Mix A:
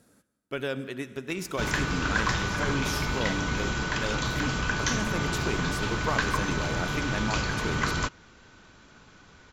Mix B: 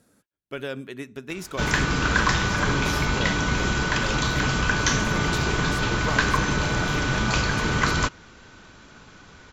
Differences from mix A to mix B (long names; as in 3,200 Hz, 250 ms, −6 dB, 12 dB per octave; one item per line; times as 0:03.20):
background +5.5 dB
reverb: off